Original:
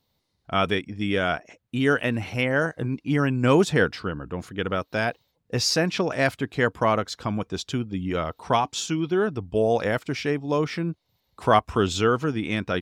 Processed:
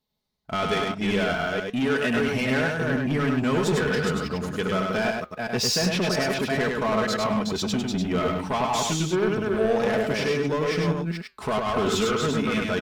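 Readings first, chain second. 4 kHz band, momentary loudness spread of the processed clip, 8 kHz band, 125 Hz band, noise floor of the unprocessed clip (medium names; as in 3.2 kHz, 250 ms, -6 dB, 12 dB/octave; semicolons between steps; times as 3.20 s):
+1.5 dB, 4 LU, +2.5 dB, -1.0 dB, -74 dBFS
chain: chunks repeated in reverse 228 ms, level -6 dB; comb 4.7 ms, depth 52%; peak limiter -13.5 dBFS, peak gain reduction 9.5 dB; waveshaping leveller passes 2; flange 1 Hz, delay 4.8 ms, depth 3.7 ms, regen -86%; on a send: delay 101 ms -3.5 dB; on the sum: trim -1 dB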